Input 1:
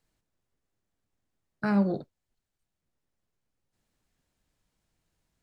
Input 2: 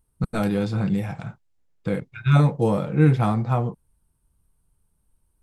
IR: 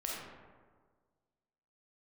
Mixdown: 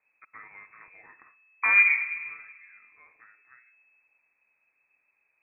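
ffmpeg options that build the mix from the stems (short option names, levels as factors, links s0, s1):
-filter_complex "[0:a]volume=1.26,asplit=3[s0][s1][s2];[s1]volume=0.376[s3];[1:a]highpass=690,acompressor=threshold=0.0282:ratio=2.5,volume=0.224,afade=t=out:st=2.39:d=0.27:silence=0.298538,asplit=2[s4][s5];[s5]volume=0.1[s6];[s2]apad=whole_len=239374[s7];[s4][s7]sidechaincompress=threshold=0.0112:ratio=8:attack=16:release=613[s8];[2:a]atrim=start_sample=2205[s9];[s3][s6]amix=inputs=2:normalize=0[s10];[s10][s9]afir=irnorm=-1:irlink=0[s11];[s0][s8][s11]amix=inputs=3:normalize=0,lowpass=f=2200:t=q:w=0.5098,lowpass=f=2200:t=q:w=0.6013,lowpass=f=2200:t=q:w=0.9,lowpass=f=2200:t=q:w=2.563,afreqshift=-2600"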